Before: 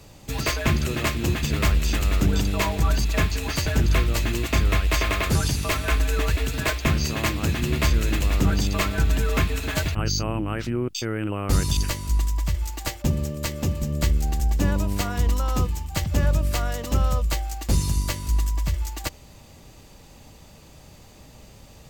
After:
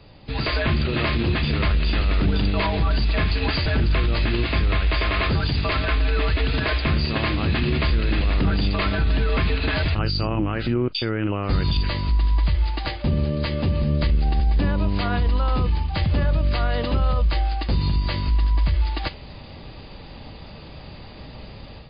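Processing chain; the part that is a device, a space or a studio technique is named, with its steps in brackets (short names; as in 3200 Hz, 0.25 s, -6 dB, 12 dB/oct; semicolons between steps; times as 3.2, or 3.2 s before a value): low-bitrate web radio (AGC gain up to 9 dB; limiter -12.5 dBFS, peak gain reduction 9 dB; MP3 24 kbps 11025 Hz)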